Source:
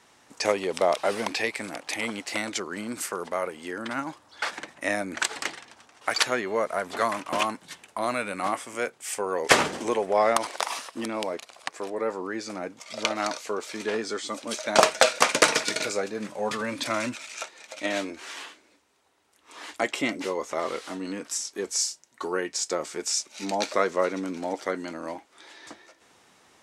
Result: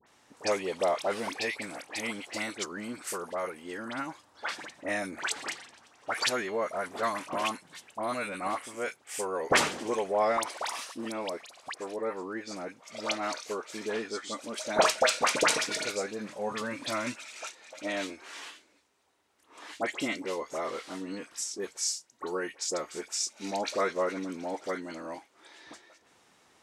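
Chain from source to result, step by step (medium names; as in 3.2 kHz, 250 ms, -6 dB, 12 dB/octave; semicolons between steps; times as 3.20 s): phase dispersion highs, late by 69 ms, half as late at 1.7 kHz; trim -4.5 dB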